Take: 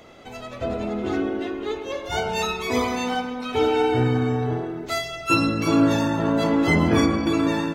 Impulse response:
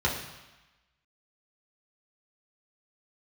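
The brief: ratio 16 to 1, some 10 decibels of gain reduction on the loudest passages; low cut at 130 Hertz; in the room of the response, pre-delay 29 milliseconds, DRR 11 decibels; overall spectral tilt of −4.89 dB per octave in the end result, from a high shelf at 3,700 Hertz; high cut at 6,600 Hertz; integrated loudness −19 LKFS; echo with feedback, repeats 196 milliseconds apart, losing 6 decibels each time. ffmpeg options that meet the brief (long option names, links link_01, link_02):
-filter_complex "[0:a]highpass=130,lowpass=6600,highshelf=frequency=3700:gain=6,acompressor=threshold=-24dB:ratio=16,aecho=1:1:196|392|588|784|980|1176:0.501|0.251|0.125|0.0626|0.0313|0.0157,asplit=2[link_01][link_02];[1:a]atrim=start_sample=2205,adelay=29[link_03];[link_02][link_03]afir=irnorm=-1:irlink=0,volume=-22.5dB[link_04];[link_01][link_04]amix=inputs=2:normalize=0,volume=8dB"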